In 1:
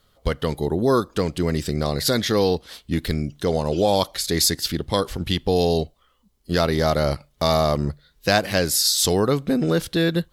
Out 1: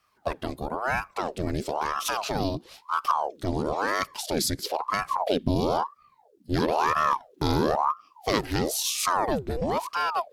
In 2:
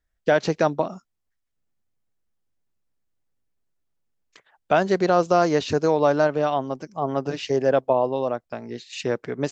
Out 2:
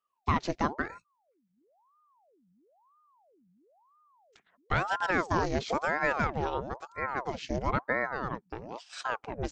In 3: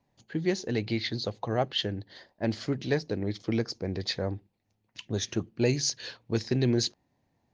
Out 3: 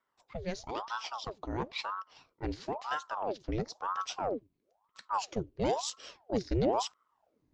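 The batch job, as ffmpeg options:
-af "asubboost=boost=6.5:cutoff=120,aeval=exprs='val(0)*sin(2*PI*700*n/s+700*0.75/1*sin(2*PI*1*n/s))':c=same,volume=-5.5dB"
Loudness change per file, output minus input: -5.5, -9.0, -5.0 LU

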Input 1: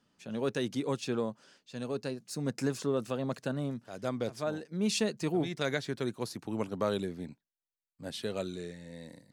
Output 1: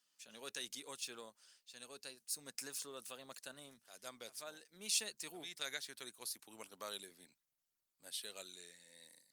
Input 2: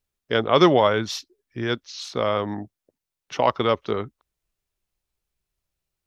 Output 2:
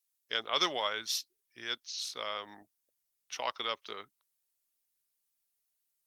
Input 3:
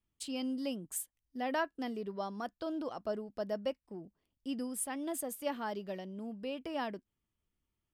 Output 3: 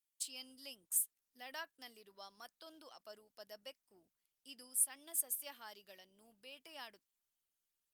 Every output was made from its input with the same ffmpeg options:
-af "aderivative,volume=3dB" -ar 48000 -c:a libopus -b:a 48k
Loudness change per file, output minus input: -10.5, -12.0, -0.5 LU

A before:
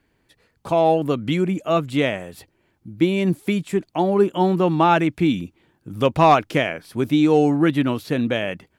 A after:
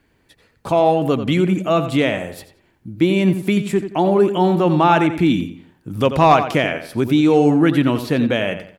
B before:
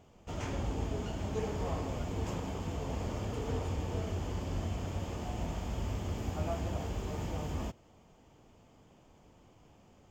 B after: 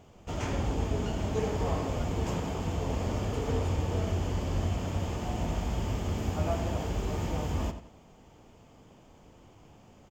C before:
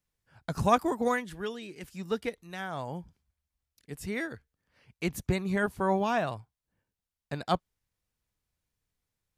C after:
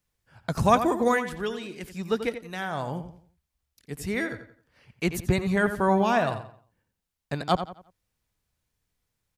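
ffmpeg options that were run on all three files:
-filter_complex "[0:a]asplit=2[a][b];[b]alimiter=limit=-15dB:level=0:latency=1,volume=-0.5dB[c];[a][c]amix=inputs=2:normalize=0,asplit=2[d][e];[e]adelay=88,lowpass=f=4.5k:p=1,volume=-10dB,asplit=2[f][g];[g]adelay=88,lowpass=f=4.5k:p=1,volume=0.34,asplit=2[h][i];[i]adelay=88,lowpass=f=4.5k:p=1,volume=0.34,asplit=2[j][k];[k]adelay=88,lowpass=f=4.5k:p=1,volume=0.34[l];[d][f][h][j][l]amix=inputs=5:normalize=0,volume=-1dB"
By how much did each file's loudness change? +3.0, +5.0, +4.5 LU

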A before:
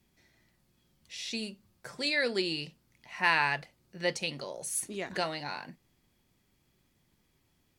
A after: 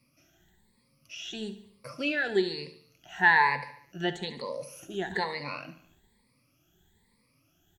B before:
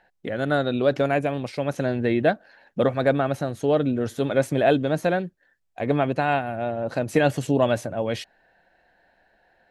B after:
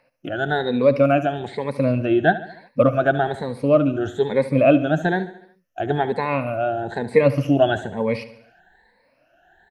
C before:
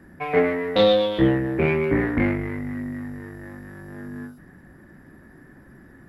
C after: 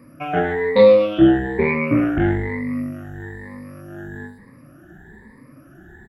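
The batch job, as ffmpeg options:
-filter_complex "[0:a]afftfilt=real='re*pow(10,20/40*sin(2*PI*(0.94*log(max(b,1)*sr/1024/100)/log(2)-(1.1)*(pts-256)/sr)))':imag='im*pow(10,20/40*sin(2*PI*(0.94*log(max(b,1)*sr/1024/100)/log(2)-(1.1)*(pts-256)/sr)))':win_size=1024:overlap=0.75,acrossover=split=3600[a][b];[b]acompressor=threshold=-50dB:ratio=4:attack=1:release=60[c];[a][c]amix=inputs=2:normalize=0,aecho=1:1:72|144|216|288|360:0.188|0.0998|0.0529|0.028|0.0149,volume=-1dB"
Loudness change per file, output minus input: +3.0, +3.5, +4.5 LU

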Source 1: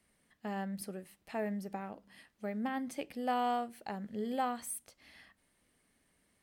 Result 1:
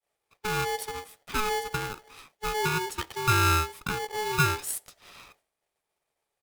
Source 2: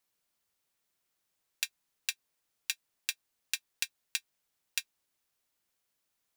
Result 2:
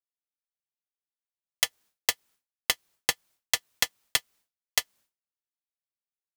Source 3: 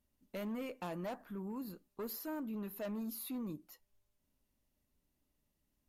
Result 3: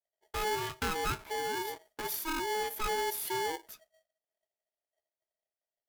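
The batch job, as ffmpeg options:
-af "aecho=1:1:1.2:0.91,agate=range=-33dB:threshold=-59dB:ratio=3:detection=peak,aeval=exprs='val(0)*sgn(sin(2*PI*640*n/s))':c=same,volume=6dB"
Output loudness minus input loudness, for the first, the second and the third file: +10.0, +8.5, +8.5 LU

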